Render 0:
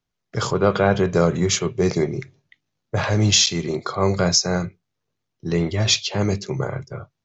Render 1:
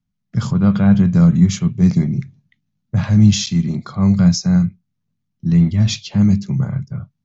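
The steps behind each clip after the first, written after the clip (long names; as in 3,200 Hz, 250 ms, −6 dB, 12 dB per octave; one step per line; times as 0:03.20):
low shelf with overshoot 290 Hz +11.5 dB, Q 3
level −6 dB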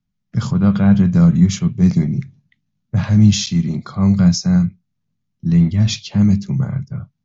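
Ogg Vorbis 64 kbit/s 16,000 Hz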